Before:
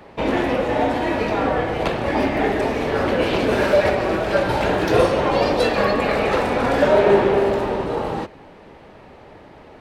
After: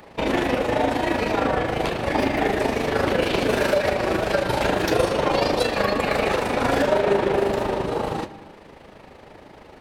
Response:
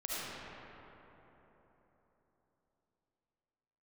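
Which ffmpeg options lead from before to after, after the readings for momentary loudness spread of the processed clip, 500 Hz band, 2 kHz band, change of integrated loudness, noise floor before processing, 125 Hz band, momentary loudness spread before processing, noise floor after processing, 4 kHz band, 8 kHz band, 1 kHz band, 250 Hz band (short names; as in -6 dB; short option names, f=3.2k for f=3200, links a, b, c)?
4 LU, -3.5 dB, -1.5 dB, -3.0 dB, -44 dBFS, -2.5 dB, 7 LU, -46 dBFS, +0.5 dB, +3.5 dB, -2.5 dB, -2.5 dB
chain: -filter_complex "[0:a]highshelf=f=4.6k:g=9,alimiter=limit=-8.5dB:level=0:latency=1:release=309,tremolo=f=26:d=0.571,asplit=2[a][b];[1:a]atrim=start_sample=2205,afade=t=out:st=0.39:d=0.01,atrim=end_sample=17640[c];[b][c]afir=irnorm=-1:irlink=0,volume=-17.5dB[d];[a][d]amix=inputs=2:normalize=0"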